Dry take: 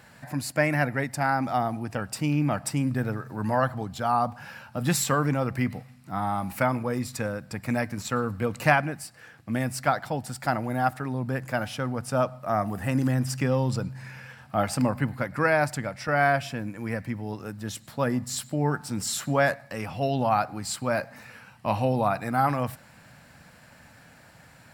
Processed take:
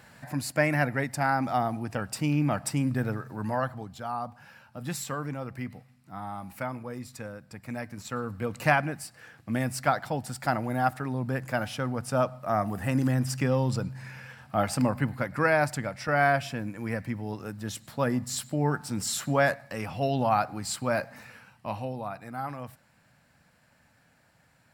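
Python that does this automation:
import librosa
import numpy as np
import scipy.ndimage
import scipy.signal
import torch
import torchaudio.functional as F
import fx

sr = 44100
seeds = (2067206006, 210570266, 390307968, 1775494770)

y = fx.gain(x, sr, db=fx.line((3.13, -1.0), (4.15, -9.5), (7.69, -9.5), (8.9, -1.0), (21.2, -1.0), (21.99, -11.5)))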